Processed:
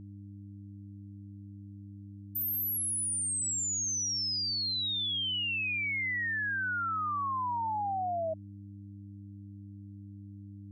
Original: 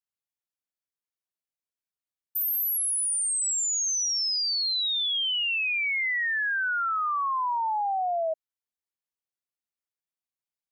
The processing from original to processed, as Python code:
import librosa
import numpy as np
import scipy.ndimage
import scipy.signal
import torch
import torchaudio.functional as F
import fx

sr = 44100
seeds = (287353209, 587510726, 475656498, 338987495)

y = fx.dmg_buzz(x, sr, base_hz=100.0, harmonics=3, level_db=-41.0, tilt_db=-5, odd_only=False)
y = y * librosa.db_to_amplitude(-5.5)